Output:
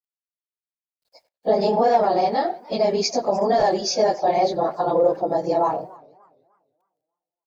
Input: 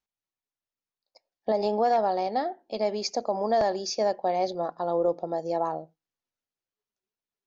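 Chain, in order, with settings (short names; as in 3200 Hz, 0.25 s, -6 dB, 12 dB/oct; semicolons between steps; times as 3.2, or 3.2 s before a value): phase scrambler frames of 50 ms; in parallel at +3 dB: limiter -19 dBFS, peak gain reduction 8 dB; on the sum: bit-crush 12-bit; speakerphone echo 90 ms, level -19 dB; warbling echo 0.294 s, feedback 31%, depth 192 cents, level -23.5 dB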